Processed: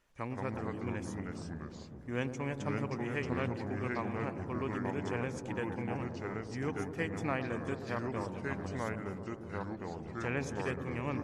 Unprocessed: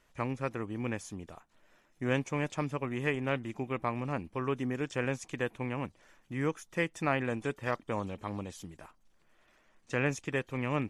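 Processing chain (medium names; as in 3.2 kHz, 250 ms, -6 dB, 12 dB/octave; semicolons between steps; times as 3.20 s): feedback echo behind a low-pass 104 ms, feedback 81%, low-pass 980 Hz, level -9.5 dB; tape speed -3%; ever faster or slower copies 135 ms, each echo -3 st, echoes 2; trim -5.5 dB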